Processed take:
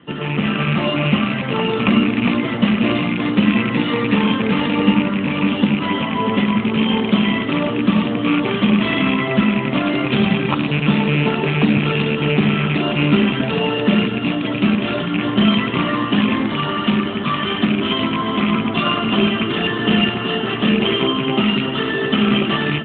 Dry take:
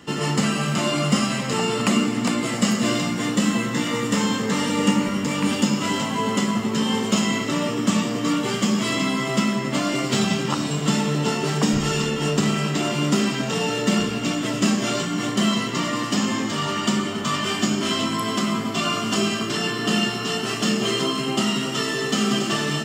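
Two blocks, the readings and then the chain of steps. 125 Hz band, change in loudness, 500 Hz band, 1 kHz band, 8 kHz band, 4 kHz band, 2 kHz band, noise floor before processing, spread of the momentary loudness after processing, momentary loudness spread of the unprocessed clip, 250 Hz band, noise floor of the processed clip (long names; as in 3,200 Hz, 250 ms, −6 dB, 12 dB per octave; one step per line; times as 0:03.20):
+5.5 dB, +4.5 dB, +4.5 dB, +3.5 dB, below −40 dB, +3.0 dB, +5.5 dB, −27 dBFS, 4 LU, 3 LU, +5.5 dB, −23 dBFS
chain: loose part that buzzes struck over −25 dBFS, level −16 dBFS
automatic gain control gain up to 9 dB
AMR narrowband 12.2 kbit/s 8,000 Hz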